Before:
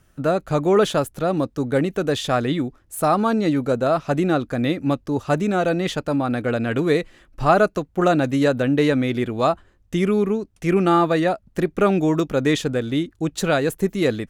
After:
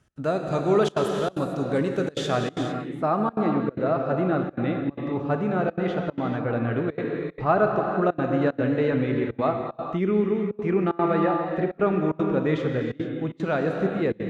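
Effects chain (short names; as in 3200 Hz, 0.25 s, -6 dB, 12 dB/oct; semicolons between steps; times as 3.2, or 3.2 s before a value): LPF 8300 Hz 12 dB/oct, from 2.47 s 2100 Hz; non-linear reverb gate 0.48 s flat, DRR 2 dB; step gate "x.xxxxxxxxx.xxx" 187 bpm -24 dB; HPF 51 Hz; gain -5.5 dB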